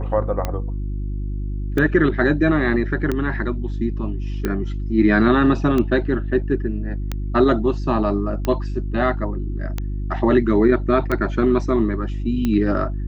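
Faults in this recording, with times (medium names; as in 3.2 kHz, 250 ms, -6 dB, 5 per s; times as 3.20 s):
hum 50 Hz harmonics 7 -25 dBFS
tick 45 rpm -10 dBFS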